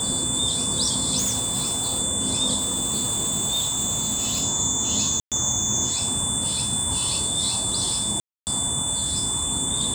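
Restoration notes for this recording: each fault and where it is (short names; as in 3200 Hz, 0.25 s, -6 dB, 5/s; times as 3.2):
tone 3500 Hz -29 dBFS
1.18–2 clipped -20 dBFS
2.57–4.44 clipped -20 dBFS
5.2–5.32 gap 0.117 s
8.2–8.47 gap 0.269 s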